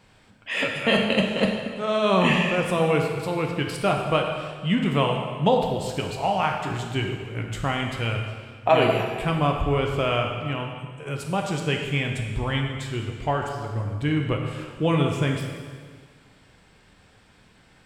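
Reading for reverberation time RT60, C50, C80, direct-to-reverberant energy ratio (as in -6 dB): 1.7 s, 4.0 dB, 5.0 dB, 1.5 dB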